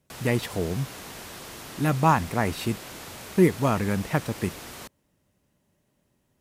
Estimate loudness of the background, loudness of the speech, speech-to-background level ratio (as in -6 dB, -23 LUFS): -39.5 LUFS, -25.5 LUFS, 14.0 dB